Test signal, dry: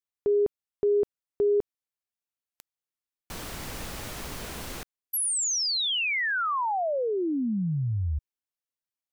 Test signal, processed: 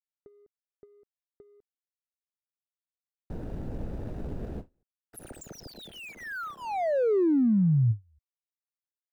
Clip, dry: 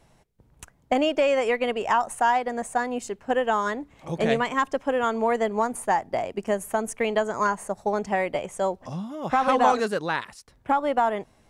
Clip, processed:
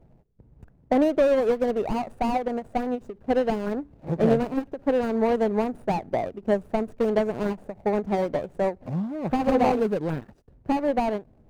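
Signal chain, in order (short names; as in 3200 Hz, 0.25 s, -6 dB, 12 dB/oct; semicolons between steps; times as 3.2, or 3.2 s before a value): median filter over 41 samples; tilt shelf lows +5.5 dB, about 1400 Hz; ending taper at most 330 dB/s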